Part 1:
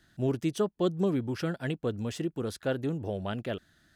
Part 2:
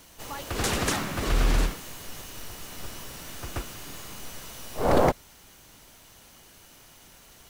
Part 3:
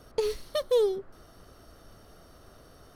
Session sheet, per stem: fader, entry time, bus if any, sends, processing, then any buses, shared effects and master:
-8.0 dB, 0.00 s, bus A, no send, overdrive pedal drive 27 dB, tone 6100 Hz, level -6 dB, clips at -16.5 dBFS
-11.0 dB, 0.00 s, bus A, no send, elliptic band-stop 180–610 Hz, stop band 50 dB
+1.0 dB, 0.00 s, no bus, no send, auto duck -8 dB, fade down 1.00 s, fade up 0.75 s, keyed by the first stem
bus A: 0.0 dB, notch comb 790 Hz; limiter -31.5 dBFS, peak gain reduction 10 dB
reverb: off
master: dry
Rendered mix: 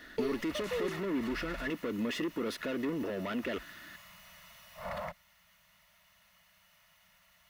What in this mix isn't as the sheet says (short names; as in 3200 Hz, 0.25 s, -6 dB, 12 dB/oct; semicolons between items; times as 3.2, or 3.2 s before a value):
stem 3 +1.0 dB -> -8.0 dB; master: extra graphic EQ 125/250/2000/8000 Hz -9/+9/+7/-8 dB